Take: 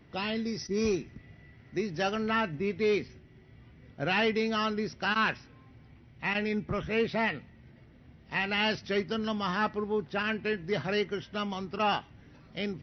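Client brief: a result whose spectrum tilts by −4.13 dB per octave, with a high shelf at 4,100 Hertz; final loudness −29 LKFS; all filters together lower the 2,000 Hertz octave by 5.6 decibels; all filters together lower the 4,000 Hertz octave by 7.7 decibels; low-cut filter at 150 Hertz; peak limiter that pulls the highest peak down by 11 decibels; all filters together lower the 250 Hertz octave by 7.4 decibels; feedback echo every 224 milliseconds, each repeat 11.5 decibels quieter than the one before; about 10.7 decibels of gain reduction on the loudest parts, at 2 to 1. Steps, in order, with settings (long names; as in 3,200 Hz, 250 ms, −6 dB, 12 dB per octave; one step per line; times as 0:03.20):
high-pass filter 150 Hz
parametric band 250 Hz −8.5 dB
parametric band 2,000 Hz −4.5 dB
parametric band 4,000 Hz −7.5 dB
high-shelf EQ 4,100 Hz −3.5 dB
downward compressor 2 to 1, threshold −47 dBFS
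brickwall limiter −40.5 dBFS
repeating echo 224 ms, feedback 27%, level −11.5 dB
level +21.5 dB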